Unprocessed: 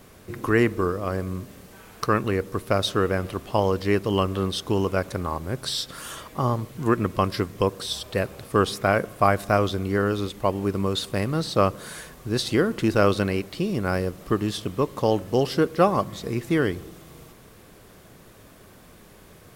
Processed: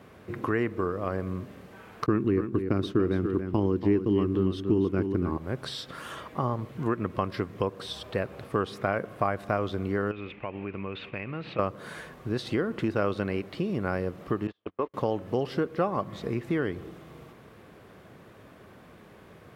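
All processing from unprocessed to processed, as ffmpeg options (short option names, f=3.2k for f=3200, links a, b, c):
-filter_complex "[0:a]asettb=1/sr,asplit=3[a][b][c];[a]atrim=end=2.064[d];[b]atrim=start=2.06:end=5.37,asetpts=PTS-STARTPTS,afade=t=in:d=0.004:c=qsin,afade=t=out:st=3.306:d=0.004:c=qsin,agate=range=-33dB:threshold=-31dB:ratio=3:release=100:detection=peak,lowshelf=f=440:t=q:w=3:g=8.5,aecho=1:1:283:0.316,atrim=end_sample=145971[e];[c]atrim=start=5.366[f];[d][e]acrossfade=d=0.004:c1=hsin:c2=qsin[g];[g][f]acrossfade=d=0.004:c1=qsin:c2=hsin,asettb=1/sr,asplit=3[h][i][j];[h]atrim=end=10.114[k];[i]atrim=start=10.11:end=11.59,asetpts=PTS-STARTPTS,afade=t=in:d=0.004:c=qsin,afade=t=out:st=1.476:d=0.004:c=qsin,agate=range=-33dB:threshold=-37dB:ratio=3:release=100:detection=peak,lowpass=f=2.5k:t=q:w=7.4,acompressor=threshold=-34dB:ratio=3:attack=3.2:release=140:knee=1:detection=peak[l];[j]atrim=start=11.586[m];[k][l]acrossfade=d=0.004:c1=hsin:c2=qsin[n];[n][m]acrossfade=d=0.004:c1=qsin:c2=hsin,asettb=1/sr,asplit=3[o][p][q];[o]atrim=end=14.474[r];[p]atrim=start=14.47:end=14.94,asetpts=PTS-STARTPTS,afade=t=in:d=0.004:c=qsin,afade=t=out:st=0.466:d=0.004:c=qsin,lowpass=3.1k,agate=range=-36dB:threshold=-28dB:ratio=16:release=100:detection=peak,equalizer=f=140:t=o:w=1.6:g=-14.5[s];[q]atrim=start=14.936[t];[r][s]acrossfade=d=0.004:c1=hsin:c2=qsin[u];[u][t]acrossfade=d=0.004:c1=qsin:c2=hsin,acompressor=threshold=-26dB:ratio=2.5,highpass=75,bass=f=250:g=-1,treble=f=4k:g=-15"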